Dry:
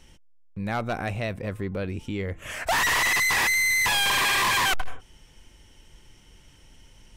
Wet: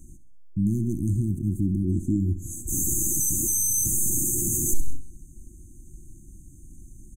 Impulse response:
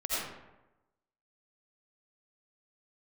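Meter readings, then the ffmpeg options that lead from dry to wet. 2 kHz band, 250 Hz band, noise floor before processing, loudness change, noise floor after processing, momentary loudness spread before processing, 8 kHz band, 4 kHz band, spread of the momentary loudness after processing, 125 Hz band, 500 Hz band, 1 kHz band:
below −40 dB, +8.0 dB, −55 dBFS, −1.0 dB, −48 dBFS, 12 LU, +7.5 dB, below −40 dB, 8 LU, +8.0 dB, −7.0 dB, below −40 dB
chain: -af "afftfilt=real='re*(1-between(b*sr/4096,370,6100))':imag='im*(1-between(b*sr/4096,370,6100))':win_size=4096:overlap=0.75,aecho=1:1:65|130|195|260:0.2|0.0938|0.0441|0.0207,volume=8dB"

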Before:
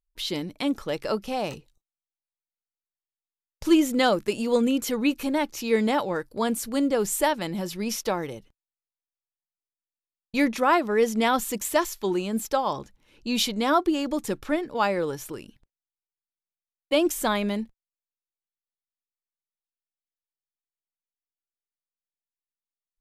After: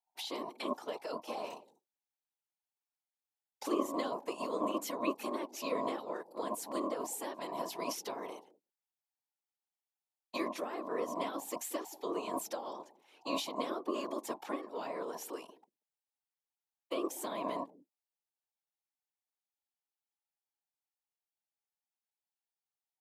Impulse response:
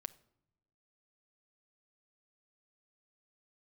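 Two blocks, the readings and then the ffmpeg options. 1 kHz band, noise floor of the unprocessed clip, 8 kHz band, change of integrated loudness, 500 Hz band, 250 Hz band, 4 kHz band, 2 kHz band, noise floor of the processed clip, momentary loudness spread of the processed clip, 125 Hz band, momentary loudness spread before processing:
−11.5 dB, below −85 dBFS, −11.5 dB, −13.5 dB, −12.0 dB, −15.5 dB, −13.5 dB, −17.0 dB, below −85 dBFS, 8 LU, −20.0 dB, 9 LU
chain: -filter_complex "[0:a]acrossover=split=280[link_01][link_02];[link_02]acompressor=threshold=-35dB:ratio=5[link_03];[link_01][link_03]amix=inputs=2:normalize=0,afftfilt=real='hypot(re,im)*cos(2*PI*random(0))':imag='hypot(re,im)*sin(2*PI*random(1))':win_size=512:overlap=0.75,acrossover=split=290|840|2100[link_04][link_05][link_06][link_07];[link_04]aeval=exprs='val(0)*sin(2*PI*830*n/s)':channel_layout=same[link_08];[link_05]aecho=1:1:186:0.126[link_09];[link_06]alimiter=level_in=23dB:limit=-24dB:level=0:latency=1,volume=-23dB[link_10];[link_08][link_09][link_10][link_07]amix=inputs=4:normalize=0,volume=2dB"

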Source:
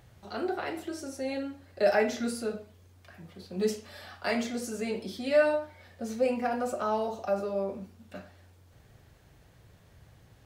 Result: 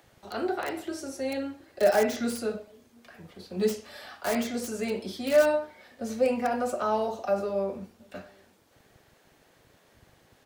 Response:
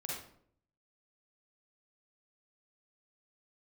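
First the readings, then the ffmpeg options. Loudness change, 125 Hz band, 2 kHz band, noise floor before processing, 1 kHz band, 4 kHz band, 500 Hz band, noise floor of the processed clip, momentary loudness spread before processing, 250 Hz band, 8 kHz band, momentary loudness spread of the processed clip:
+2.0 dB, +1.0 dB, +0.5 dB, −59 dBFS, +2.5 dB, +2.0 dB, +2.5 dB, −62 dBFS, 19 LU, +2.0 dB, +3.5 dB, 18 LU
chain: -filter_complex "[0:a]acrossover=split=230|430|1700[link_01][link_02][link_03][link_04];[link_01]aeval=exprs='sgn(val(0))*max(abs(val(0))-0.00158,0)':channel_layout=same[link_05];[link_02]aecho=1:1:722:0.0794[link_06];[link_04]aeval=exprs='(mod(47.3*val(0)+1,2)-1)/47.3':channel_layout=same[link_07];[link_05][link_06][link_03][link_07]amix=inputs=4:normalize=0,volume=2.5dB"

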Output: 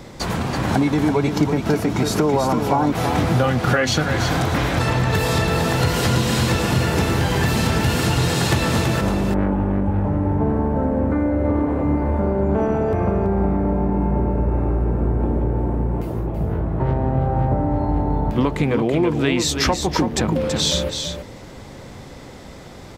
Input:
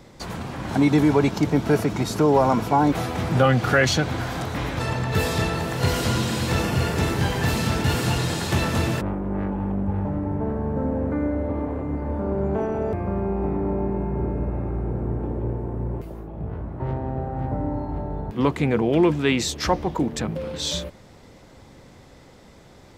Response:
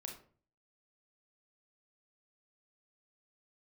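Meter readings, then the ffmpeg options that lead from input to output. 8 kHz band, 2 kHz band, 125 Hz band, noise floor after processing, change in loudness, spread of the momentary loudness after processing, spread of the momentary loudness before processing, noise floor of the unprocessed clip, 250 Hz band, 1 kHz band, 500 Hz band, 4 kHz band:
+5.5 dB, +3.0 dB, +4.5 dB, −38 dBFS, +4.0 dB, 6 LU, 10 LU, −48 dBFS, +3.5 dB, +3.5 dB, +3.0 dB, +5.0 dB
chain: -filter_complex "[0:a]acompressor=threshold=-25dB:ratio=6,asplit=2[link_01][link_02];[link_02]aecho=0:1:330:0.473[link_03];[link_01][link_03]amix=inputs=2:normalize=0,volume=9dB"

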